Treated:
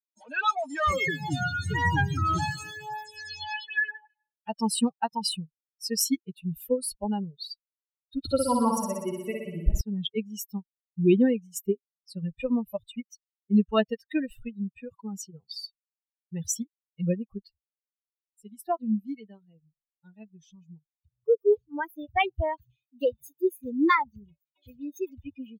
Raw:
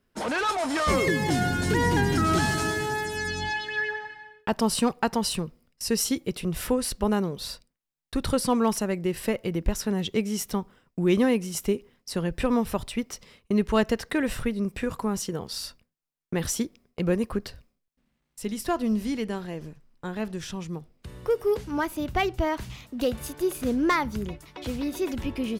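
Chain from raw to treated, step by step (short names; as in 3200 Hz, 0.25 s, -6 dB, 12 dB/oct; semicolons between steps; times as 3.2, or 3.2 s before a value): per-bin expansion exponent 3; 8.19–9.81 flutter echo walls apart 10.5 m, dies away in 1 s; gain +5.5 dB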